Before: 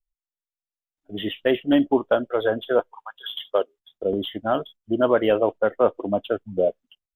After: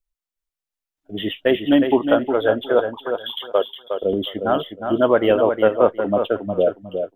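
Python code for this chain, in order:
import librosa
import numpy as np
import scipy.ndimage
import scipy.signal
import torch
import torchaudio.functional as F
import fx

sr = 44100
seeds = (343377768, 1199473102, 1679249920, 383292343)

y = fx.echo_feedback(x, sr, ms=361, feedback_pct=19, wet_db=-7)
y = y * 10.0 ** (3.0 / 20.0)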